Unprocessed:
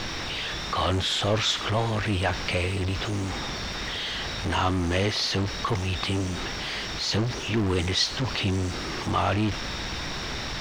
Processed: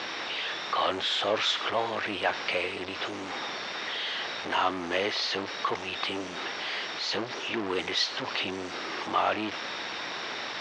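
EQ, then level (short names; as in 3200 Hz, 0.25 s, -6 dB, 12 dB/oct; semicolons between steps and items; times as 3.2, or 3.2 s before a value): BPF 410–4100 Hz; 0.0 dB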